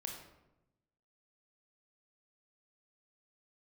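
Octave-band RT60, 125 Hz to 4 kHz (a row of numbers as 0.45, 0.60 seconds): 1.3, 1.2, 1.0, 0.85, 0.70, 0.55 seconds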